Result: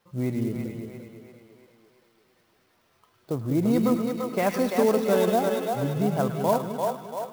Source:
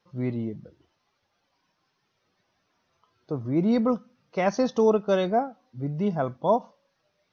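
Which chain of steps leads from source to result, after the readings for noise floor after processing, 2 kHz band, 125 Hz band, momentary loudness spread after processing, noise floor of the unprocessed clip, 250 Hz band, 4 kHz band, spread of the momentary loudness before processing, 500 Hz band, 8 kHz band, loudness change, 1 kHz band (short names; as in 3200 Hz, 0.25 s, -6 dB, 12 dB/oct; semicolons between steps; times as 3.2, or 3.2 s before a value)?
-66 dBFS, +2.5 dB, +3.0 dB, 12 LU, -75 dBFS, +1.5 dB, +3.0 dB, 13 LU, +1.0 dB, n/a, +1.0 dB, +1.0 dB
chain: thin delay 0.106 s, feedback 59%, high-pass 1700 Hz, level -4.5 dB; compressor 1.5:1, threshold -31 dBFS, peak gain reduction 5.5 dB; split-band echo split 400 Hz, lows 0.191 s, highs 0.341 s, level -4 dB; clock jitter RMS 0.029 ms; gain +3.5 dB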